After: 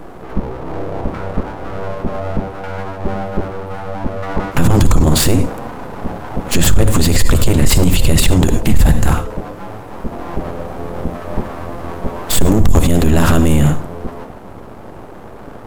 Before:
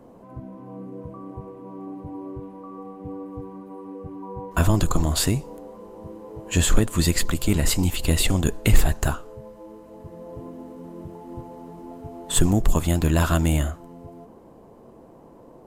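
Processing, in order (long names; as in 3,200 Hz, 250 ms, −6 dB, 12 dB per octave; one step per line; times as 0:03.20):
low-shelf EQ 160 Hz +11 dB
full-wave rectification
on a send at −13 dB: convolution reverb, pre-delay 47 ms
on the sum: boost into a limiter +15.5 dB
level −1 dB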